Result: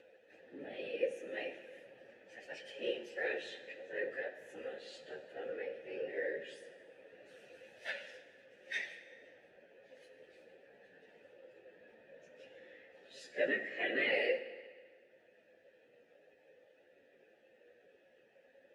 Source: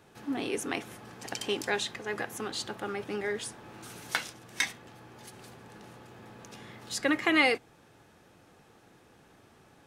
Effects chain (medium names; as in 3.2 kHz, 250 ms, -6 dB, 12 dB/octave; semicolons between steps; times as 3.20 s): upward compressor, threshold -50 dBFS; whisper effect; plain phase-vocoder stretch 1.9×; vowel filter e; on a send: reverberation RT60 1.7 s, pre-delay 13 ms, DRR 10.5 dB; on the sum: trim +4.5 dB